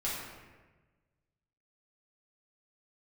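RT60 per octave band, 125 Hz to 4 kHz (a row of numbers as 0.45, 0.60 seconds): 1.8, 1.5, 1.4, 1.2, 1.2, 0.85 seconds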